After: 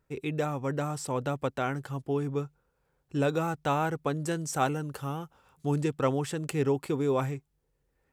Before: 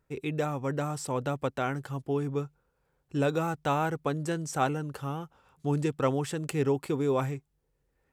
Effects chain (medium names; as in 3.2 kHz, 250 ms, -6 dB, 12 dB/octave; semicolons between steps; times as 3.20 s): 4.22–5.76 s: treble shelf 7 kHz +6 dB